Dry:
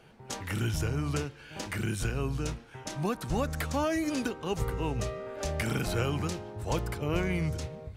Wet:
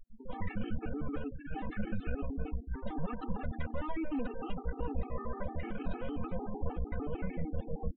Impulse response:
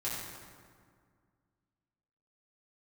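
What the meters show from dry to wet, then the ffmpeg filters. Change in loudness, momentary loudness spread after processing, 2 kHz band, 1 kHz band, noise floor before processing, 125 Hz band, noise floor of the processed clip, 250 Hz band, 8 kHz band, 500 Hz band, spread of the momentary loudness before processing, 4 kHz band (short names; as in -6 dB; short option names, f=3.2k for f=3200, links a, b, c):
-7.5 dB, 3 LU, -10.5 dB, -6.5 dB, -51 dBFS, -9.0 dB, -48 dBFS, -5.0 dB, under -40 dB, -8.0 dB, 8 LU, -18.5 dB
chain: -filter_complex "[0:a]aeval=exprs='max(val(0),0)':c=same,asplit=2[a][b];[b]aemphasis=mode=reproduction:type=bsi[c];[1:a]atrim=start_sample=2205[d];[c][d]afir=irnorm=-1:irlink=0,volume=-28dB[e];[a][e]amix=inputs=2:normalize=0,afftdn=nr=18:nf=-47,acompressor=threshold=-36dB:ratio=16,alimiter=level_in=13dB:limit=-24dB:level=0:latency=1:release=161,volume=-13dB,aecho=1:1:4:0.75,afftfilt=real='re*gte(hypot(re,im),0.00126)':imag='im*gte(hypot(re,im),0.00126)':win_size=1024:overlap=0.75,highshelf=f=2.1k:g=-11.5,aresample=8000,aresample=44100,afftfilt=real='re*gt(sin(2*PI*6.6*pts/sr)*(1-2*mod(floor(b*sr/1024/230),2)),0)':imag='im*gt(sin(2*PI*6.6*pts/sr)*(1-2*mod(floor(b*sr/1024/230),2)),0)':win_size=1024:overlap=0.75,volume=14.5dB"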